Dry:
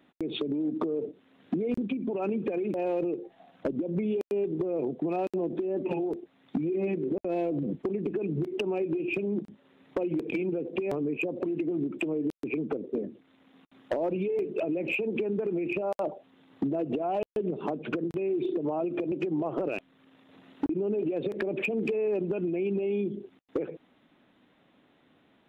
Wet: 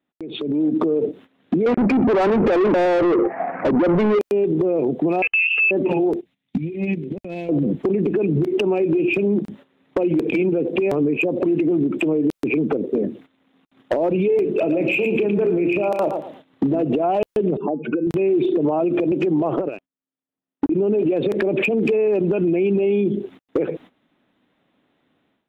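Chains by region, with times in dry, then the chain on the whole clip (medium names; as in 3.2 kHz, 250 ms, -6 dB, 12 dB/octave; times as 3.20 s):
1.66–4.19 s: steep low-pass 2.3 kHz 72 dB/octave + overdrive pedal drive 27 dB, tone 1.7 kHz, clips at -19.5 dBFS
5.22–5.71 s: comb 2.3 ms, depth 98% + frequency inversion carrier 3 kHz
6.21–7.49 s: high-order bell 670 Hz -11.5 dB 2.8 oct + upward expansion, over -51 dBFS
14.44–16.83 s: doubling 34 ms -13 dB + feedback delay 115 ms, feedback 28%, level -10 dB
17.57–18.07 s: spectral contrast enhancement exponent 1.8 + feedback comb 170 Hz, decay 0.53 s, harmonics odd, mix 40%
19.56–20.72 s: treble shelf 2.8 kHz -7 dB + upward expansion 2.5:1, over -47 dBFS
whole clip: gate -54 dBFS, range -16 dB; peak limiter -26.5 dBFS; level rider gain up to 14 dB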